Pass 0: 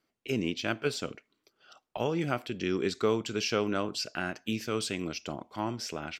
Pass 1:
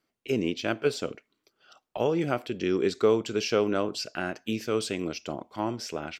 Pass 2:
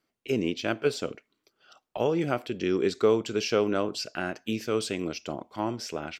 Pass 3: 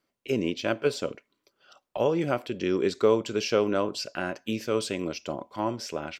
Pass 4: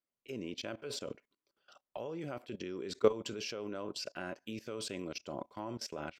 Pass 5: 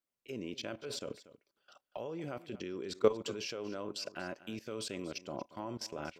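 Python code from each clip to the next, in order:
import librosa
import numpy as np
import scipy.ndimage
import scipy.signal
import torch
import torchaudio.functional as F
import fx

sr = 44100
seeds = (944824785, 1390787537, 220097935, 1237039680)

y1 = fx.dynamic_eq(x, sr, hz=470.0, q=0.94, threshold_db=-43.0, ratio=4.0, max_db=6)
y2 = y1
y3 = fx.small_body(y2, sr, hz=(560.0, 1000.0), ring_ms=95, db=9)
y4 = fx.level_steps(y3, sr, step_db=19)
y4 = y4 * 10.0 ** (-2.5 / 20.0)
y5 = y4 + 10.0 ** (-17.0 / 20.0) * np.pad(y4, (int(236 * sr / 1000.0), 0))[:len(y4)]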